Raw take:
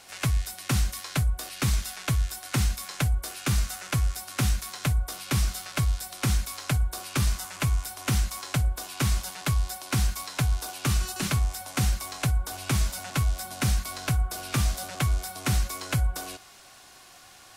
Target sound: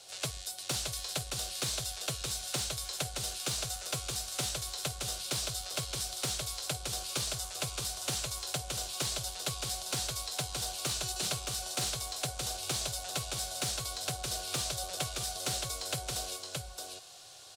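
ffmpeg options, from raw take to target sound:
ffmpeg -i in.wav -filter_complex "[0:a]equalizer=frequency=125:width_type=o:width=1:gain=10,equalizer=frequency=250:width_type=o:width=1:gain=-11,equalizer=frequency=500:width_type=o:width=1:gain=4,equalizer=frequency=1000:width_type=o:width=1:gain=-8,equalizer=frequency=2000:width_type=o:width=1:gain=-12,equalizer=frequency=4000:width_type=o:width=1:gain=7,equalizer=frequency=8000:width_type=o:width=1:gain=8,aecho=1:1:621:0.631,acrossover=split=260|1300|3300[link_01][link_02][link_03][link_04];[link_01]acompressor=threshold=-31dB:ratio=5[link_05];[link_05][link_02][link_03][link_04]amix=inputs=4:normalize=0,asoftclip=type=hard:threshold=-19.5dB,bass=frequency=250:gain=-13,treble=frequency=4000:gain=-9" out.wav

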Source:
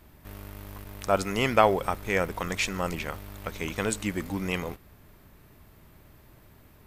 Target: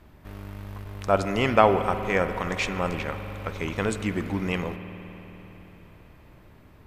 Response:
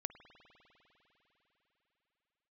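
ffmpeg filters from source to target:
-filter_complex "[0:a]aemphasis=mode=reproduction:type=50kf[link_01];[1:a]atrim=start_sample=2205[link_02];[link_01][link_02]afir=irnorm=-1:irlink=0,volume=5.5dB"

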